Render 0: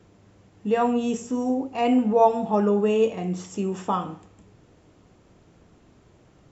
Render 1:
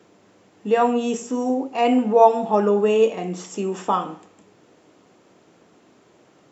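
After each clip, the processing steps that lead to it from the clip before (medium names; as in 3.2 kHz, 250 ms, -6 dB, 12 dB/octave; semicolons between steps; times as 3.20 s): high-pass 260 Hz 12 dB/octave; trim +4.5 dB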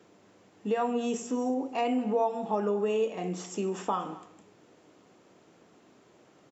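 compression 3:1, threshold -22 dBFS, peak gain reduction 11 dB; delay 231 ms -19.5 dB; trim -4.5 dB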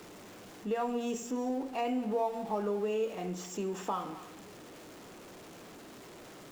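jump at every zero crossing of -41 dBFS; trim -5 dB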